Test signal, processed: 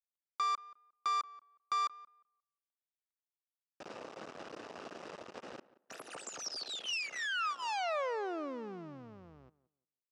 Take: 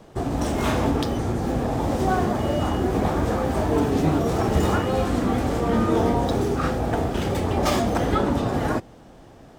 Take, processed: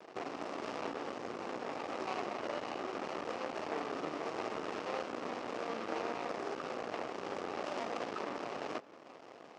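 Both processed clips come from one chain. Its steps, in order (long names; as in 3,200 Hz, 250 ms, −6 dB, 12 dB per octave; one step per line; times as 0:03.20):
running median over 41 samples
downward compressor 2.5 to 1, threshold −37 dBFS
half-wave rectification
loudspeaker in its box 450–7,400 Hz, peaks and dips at 1,200 Hz +7 dB, 2,800 Hz +4 dB, 5,300 Hz +5 dB
tape delay 179 ms, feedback 22%, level −17.5 dB, low-pass 1,500 Hz
level +4.5 dB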